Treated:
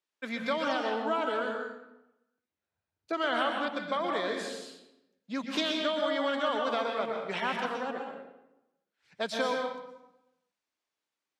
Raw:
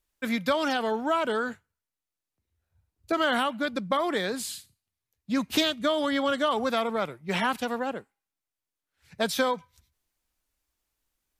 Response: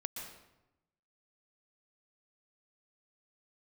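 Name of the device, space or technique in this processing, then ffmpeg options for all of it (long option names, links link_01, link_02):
supermarket ceiling speaker: -filter_complex "[0:a]highpass=270,lowpass=5600[link_01];[1:a]atrim=start_sample=2205[link_02];[link_01][link_02]afir=irnorm=-1:irlink=0,volume=-2.5dB"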